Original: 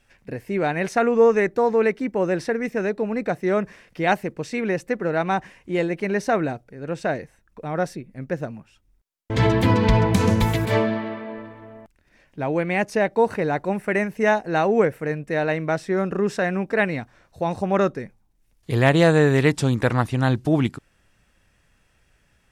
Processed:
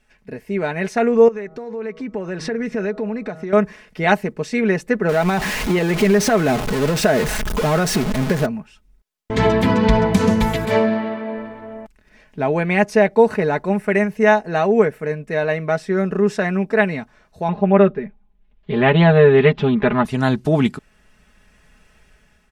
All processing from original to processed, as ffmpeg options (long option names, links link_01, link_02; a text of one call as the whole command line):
ffmpeg -i in.wav -filter_complex "[0:a]asettb=1/sr,asplit=3[link_01][link_02][link_03];[link_01]atrim=end=1.284[link_04];[link_02]atrim=start=1.28:end=3.53,asetpts=PTS-STARTPTS,afade=type=in:duration=0.004:curve=qsin,afade=type=out:start_time=2.246:duration=0.004:curve=qsin,lowpass=7000,bandreject=frequency=159.7:width_type=h:width=4,bandreject=frequency=319.4:width_type=h:width=4,bandreject=frequency=479.1:width_type=h:width=4,bandreject=frequency=638.8:width_type=h:width=4,bandreject=frequency=798.5:width_type=h:width=4,bandreject=frequency=958.2:width_type=h:width=4,bandreject=frequency=1117.9:width_type=h:width=4,bandreject=frequency=1277.6:width_type=h:width=4,bandreject=frequency=1437.3:width_type=h:width=4,acompressor=threshold=-31dB:ratio=5:attack=3.2:release=140:knee=1:detection=peak[link_05];[link_03]atrim=start=3.526[link_06];[link_04][link_05]acrossfade=duration=0.004:curve1=hsin:curve2=qsin[link_07];[link_07][link_06]acrossfade=duration=0.004:curve1=qsin:curve2=hsin,asettb=1/sr,asplit=3[link_08][link_09][link_10];[link_08]atrim=end=5.094[link_11];[link_09]atrim=start=5.09:end=8.46,asetpts=PTS-STARTPTS,afade=type=in:duration=0.004:curve=qsin,afade=type=out:start_time=3.366:duration=0.004:curve=qsin,aeval=exprs='val(0)+0.5*0.0473*sgn(val(0))':channel_layout=same,acompressor=threshold=-22dB:ratio=4:attack=3.2:release=140:knee=1:detection=peak[link_12];[link_10]atrim=start=8.456[link_13];[link_11][link_12]acrossfade=duration=0.004:curve1=hsin:curve2=qsin[link_14];[link_14][link_13]acrossfade=duration=0.004:curve1=qsin:curve2=hsin,asettb=1/sr,asplit=3[link_15][link_16][link_17];[link_15]atrim=end=17.484[link_18];[link_16]atrim=start=17.48:end=20.05,asetpts=PTS-STARTPTS,afade=type=in:duration=0.004:curve=qsin,afade=type=out:start_time=2.566:duration=0.004:curve=qsin,lowpass=frequency=3200:width=0.5412,lowpass=frequency=3200:width=1.3066,aecho=1:1:5:0.79,atrim=end_sample=113337[link_19];[link_17]atrim=start=20.046[link_20];[link_18][link_19]acrossfade=duration=0.004:curve1=hsin:curve2=qsin[link_21];[link_21][link_20]acrossfade=duration=0.004:curve1=qsin:curve2=hsin,highshelf=frequency=7200:gain=-4,aecho=1:1:4.7:0.57,dynaudnorm=framelen=350:gausssize=5:maxgain=11.5dB,volume=-1dB" out.wav